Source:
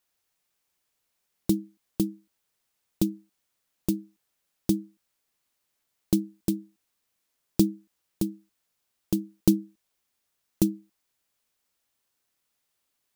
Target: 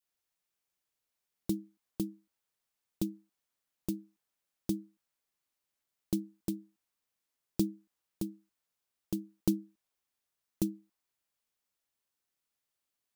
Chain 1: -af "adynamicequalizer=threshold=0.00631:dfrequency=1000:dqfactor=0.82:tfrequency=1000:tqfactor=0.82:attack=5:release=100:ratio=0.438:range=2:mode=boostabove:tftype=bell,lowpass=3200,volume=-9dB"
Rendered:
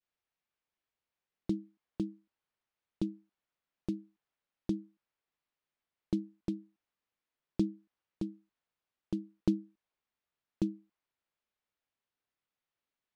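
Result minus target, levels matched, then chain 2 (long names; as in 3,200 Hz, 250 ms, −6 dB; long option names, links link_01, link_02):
4,000 Hz band −5.5 dB
-af "adynamicequalizer=threshold=0.00631:dfrequency=1000:dqfactor=0.82:tfrequency=1000:tqfactor=0.82:attack=5:release=100:ratio=0.438:range=2:mode=boostabove:tftype=bell,volume=-9dB"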